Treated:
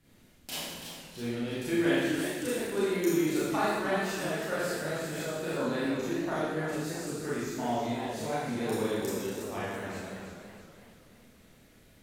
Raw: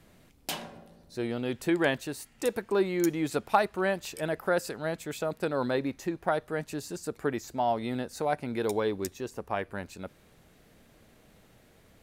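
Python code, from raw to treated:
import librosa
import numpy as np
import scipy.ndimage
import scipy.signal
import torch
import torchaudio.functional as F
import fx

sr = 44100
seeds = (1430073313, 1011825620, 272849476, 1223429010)

y = fx.peak_eq(x, sr, hz=760.0, db=-6.0, octaves=1.7)
y = fx.rev_schroeder(y, sr, rt60_s=1.3, comb_ms=26, drr_db=-9.5)
y = fx.echo_warbled(y, sr, ms=326, feedback_pct=46, rate_hz=2.8, cents=146, wet_db=-8.0)
y = F.gain(torch.from_numpy(y), -8.5).numpy()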